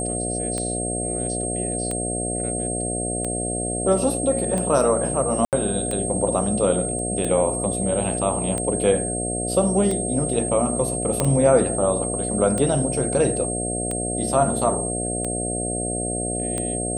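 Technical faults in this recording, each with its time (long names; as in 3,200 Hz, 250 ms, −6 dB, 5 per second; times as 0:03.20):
mains buzz 60 Hz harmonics 12 −28 dBFS
scratch tick 45 rpm −14 dBFS
whistle 8,500 Hz −27 dBFS
0:05.45–0:05.53: drop-out 78 ms
0:06.99: drop-out 2.3 ms
0:11.20: click −6 dBFS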